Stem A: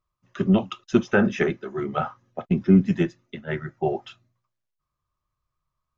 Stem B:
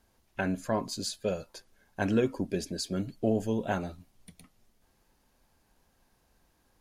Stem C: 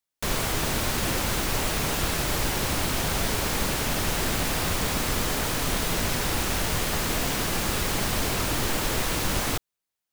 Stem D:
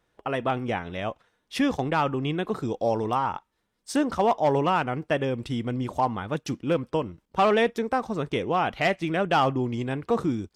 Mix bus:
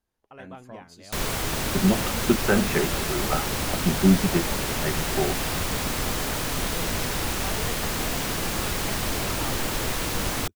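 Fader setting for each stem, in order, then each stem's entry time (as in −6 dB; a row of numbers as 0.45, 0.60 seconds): −2.0, −14.0, −1.0, −18.0 decibels; 1.35, 0.00, 0.90, 0.05 seconds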